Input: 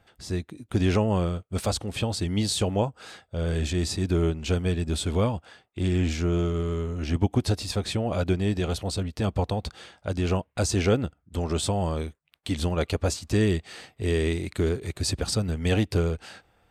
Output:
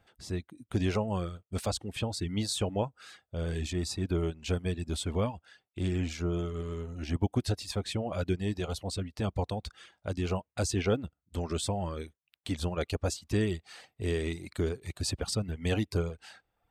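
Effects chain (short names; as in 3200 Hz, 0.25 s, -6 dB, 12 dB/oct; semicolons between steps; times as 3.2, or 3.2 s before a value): reverb removal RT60 0.75 s; gain -5 dB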